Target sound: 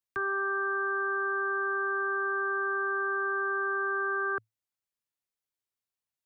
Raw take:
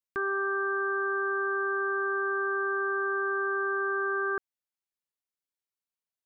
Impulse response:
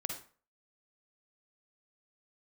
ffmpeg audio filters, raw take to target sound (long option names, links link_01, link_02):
-filter_complex "[0:a]equalizer=frequency=110:width_type=o:width=0.28:gain=10.5,acrossover=split=150|420|550[link_01][link_02][link_03][link_04];[link_02]alimiter=level_in=18dB:limit=-24dB:level=0:latency=1,volume=-18dB[link_05];[link_01][link_05][link_03][link_04]amix=inputs=4:normalize=0"